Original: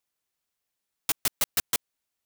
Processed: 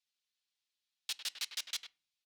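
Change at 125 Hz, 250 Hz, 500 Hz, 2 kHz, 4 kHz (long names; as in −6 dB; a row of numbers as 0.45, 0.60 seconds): below −35 dB, below −30 dB, −25.0 dB, −10.0 dB, −4.5 dB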